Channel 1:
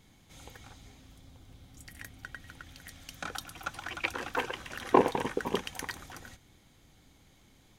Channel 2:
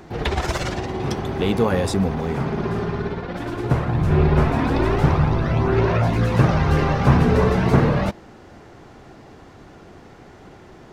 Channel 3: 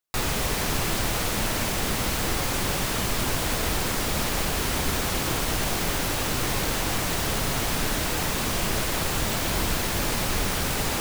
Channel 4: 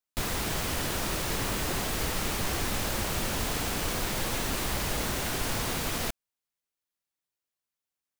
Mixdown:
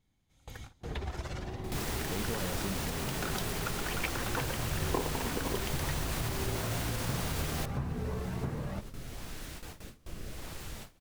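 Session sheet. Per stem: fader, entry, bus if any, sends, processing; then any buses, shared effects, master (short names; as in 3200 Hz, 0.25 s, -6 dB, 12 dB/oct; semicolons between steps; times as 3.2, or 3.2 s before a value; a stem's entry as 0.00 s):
+2.5 dB, 0.00 s, bus A, no send, dry
-15.0 dB, 0.70 s, bus A, no send, dry
-18.0 dB, 1.50 s, bus A, no send, rotary speaker horn 0.85 Hz
-5.0 dB, 1.55 s, no bus, no send, limiter -22 dBFS, peak gain reduction 5 dB
bus A: 0.0 dB, low shelf 130 Hz +8 dB; compressor 3:1, threshold -34 dBFS, peak gain reduction 16 dB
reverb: off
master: gate with hold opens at -32 dBFS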